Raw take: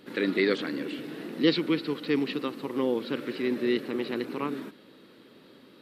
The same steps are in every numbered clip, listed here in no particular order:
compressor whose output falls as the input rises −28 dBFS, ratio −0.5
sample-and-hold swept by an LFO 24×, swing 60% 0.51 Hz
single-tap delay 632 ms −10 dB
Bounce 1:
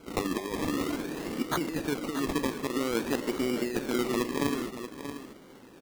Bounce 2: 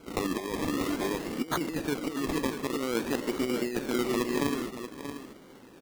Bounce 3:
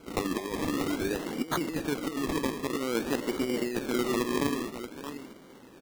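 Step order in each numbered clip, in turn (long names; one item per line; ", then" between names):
compressor whose output falls as the input rises, then sample-and-hold swept by an LFO, then single-tap delay
sample-and-hold swept by an LFO, then single-tap delay, then compressor whose output falls as the input rises
single-tap delay, then compressor whose output falls as the input rises, then sample-and-hold swept by an LFO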